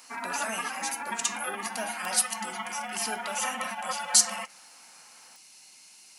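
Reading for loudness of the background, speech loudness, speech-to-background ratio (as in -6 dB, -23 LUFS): -35.0 LUFS, -29.5 LUFS, 5.5 dB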